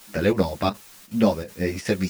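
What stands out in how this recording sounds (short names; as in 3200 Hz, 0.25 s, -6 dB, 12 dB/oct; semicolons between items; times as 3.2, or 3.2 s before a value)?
a quantiser's noise floor 8-bit, dither triangular; chopped level 2.7 Hz, depth 65%, duty 85%; a shimmering, thickened sound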